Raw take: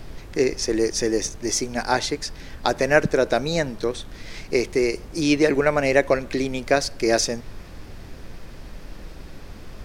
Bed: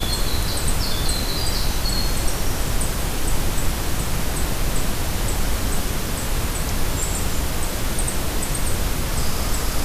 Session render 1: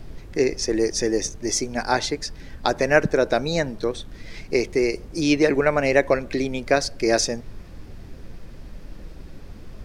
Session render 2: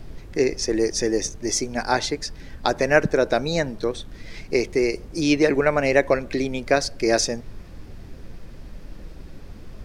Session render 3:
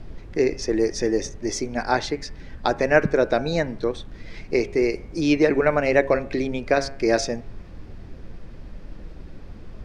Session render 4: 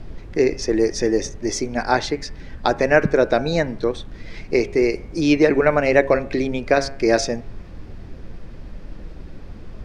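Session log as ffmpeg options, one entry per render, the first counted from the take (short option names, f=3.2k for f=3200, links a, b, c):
-af "afftdn=nr=6:nf=-40"
-af anull
-af "aemphasis=mode=reproduction:type=50fm,bandreject=f=136.9:t=h:w=4,bandreject=f=273.8:t=h:w=4,bandreject=f=410.7:t=h:w=4,bandreject=f=547.6:t=h:w=4,bandreject=f=684.5:t=h:w=4,bandreject=f=821.4:t=h:w=4,bandreject=f=958.3:t=h:w=4,bandreject=f=1.0952k:t=h:w=4,bandreject=f=1.2321k:t=h:w=4,bandreject=f=1.369k:t=h:w=4,bandreject=f=1.5059k:t=h:w=4,bandreject=f=1.6428k:t=h:w=4,bandreject=f=1.7797k:t=h:w=4,bandreject=f=1.9166k:t=h:w=4,bandreject=f=2.0535k:t=h:w=4,bandreject=f=2.1904k:t=h:w=4,bandreject=f=2.3273k:t=h:w=4,bandreject=f=2.4642k:t=h:w=4,bandreject=f=2.6011k:t=h:w=4,bandreject=f=2.738k:t=h:w=4,bandreject=f=2.8749k:t=h:w=4"
-af "volume=3dB,alimiter=limit=-1dB:level=0:latency=1"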